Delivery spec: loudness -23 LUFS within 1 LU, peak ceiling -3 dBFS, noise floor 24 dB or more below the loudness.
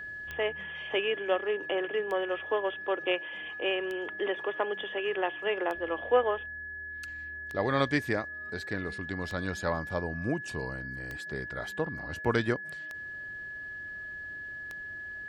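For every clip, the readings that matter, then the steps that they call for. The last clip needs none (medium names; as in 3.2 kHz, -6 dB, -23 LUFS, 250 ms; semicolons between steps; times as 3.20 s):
clicks found 9; steady tone 1.7 kHz; tone level -38 dBFS; loudness -32.5 LUFS; peak level -13.0 dBFS; loudness target -23.0 LUFS
-> de-click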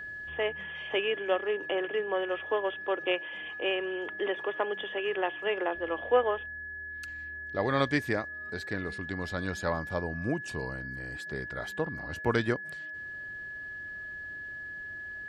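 clicks found 0; steady tone 1.7 kHz; tone level -38 dBFS
-> band-stop 1.7 kHz, Q 30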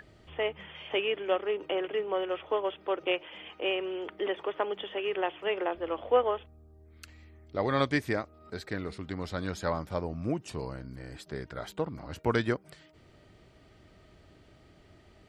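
steady tone not found; loudness -32.5 LUFS; peak level -13.0 dBFS; loudness target -23.0 LUFS
-> trim +9.5 dB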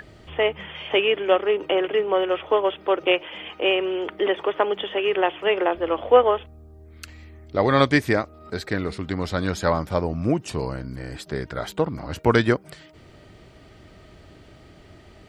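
loudness -23.0 LUFS; peak level -3.5 dBFS; noise floor -49 dBFS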